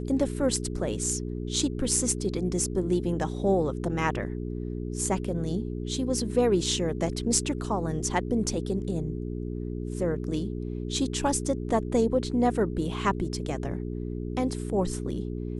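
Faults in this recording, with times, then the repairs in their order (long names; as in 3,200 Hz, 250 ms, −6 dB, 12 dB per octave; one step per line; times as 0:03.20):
mains hum 60 Hz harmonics 7 −33 dBFS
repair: hum removal 60 Hz, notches 7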